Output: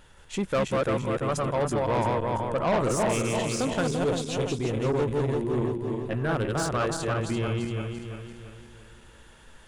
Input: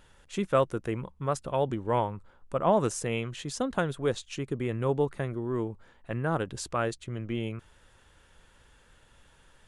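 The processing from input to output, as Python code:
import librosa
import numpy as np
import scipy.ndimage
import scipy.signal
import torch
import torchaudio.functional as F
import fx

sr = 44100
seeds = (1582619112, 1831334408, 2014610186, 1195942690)

y = fx.reverse_delay_fb(x, sr, ms=170, feedback_pct=66, wet_db=-2)
y = fx.peak_eq(y, sr, hz=1500.0, db=-9.5, octaves=0.59, at=(3.87, 6.1))
y = 10.0 ** (-24.0 / 20.0) * np.tanh(y / 10.0 ** (-24.0 / 20.0))
y = y * 10.0 ** (4.0 / 20.0)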